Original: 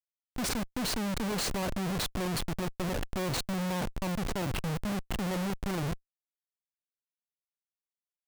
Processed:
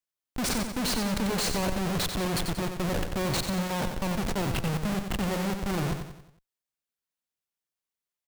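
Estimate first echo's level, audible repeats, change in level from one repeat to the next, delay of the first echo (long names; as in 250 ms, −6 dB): −7.0 dB, 5, −6.5 dB, 91 ms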